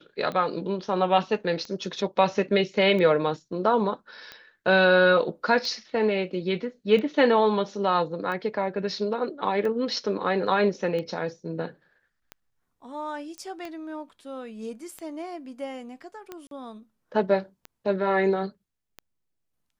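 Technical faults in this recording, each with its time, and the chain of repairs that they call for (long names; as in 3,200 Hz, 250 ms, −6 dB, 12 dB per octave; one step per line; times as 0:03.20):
scratch tick 45 rpm −22 dBFS
0:13.38: click −25 dBFS
0:16.47–0:16.51: drop-out 42 ms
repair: click removal
repair the gap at 0:16.47, 42 ms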